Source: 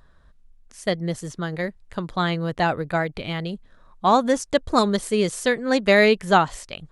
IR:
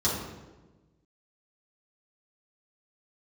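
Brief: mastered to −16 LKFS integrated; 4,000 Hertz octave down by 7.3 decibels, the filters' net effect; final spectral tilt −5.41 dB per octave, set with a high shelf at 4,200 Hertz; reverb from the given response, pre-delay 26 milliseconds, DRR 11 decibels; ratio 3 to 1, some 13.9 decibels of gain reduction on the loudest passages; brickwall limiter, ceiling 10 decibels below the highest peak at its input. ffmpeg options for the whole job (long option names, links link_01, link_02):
-filter_complex "[0:a]equalizer=frequency=4000:width_type=o:gain=-7,highshelf=frequency=4200:gain=-4,acompressor=threshold=-32dB:ratio=3,alimiter=level_in=4dB:limit=-24dB:level=0:latency=1,volume=-4dB,asplit=2[link_01][link_02];[1:a]atrim=start_sample=2205,adelay=26[link_03];[link_02][link_03]afir=irnorm=-1:irlink=0,volume=-22dB[link_04];[link_01][link_04]amix=inputs=2:normalize=0,volume=21dB"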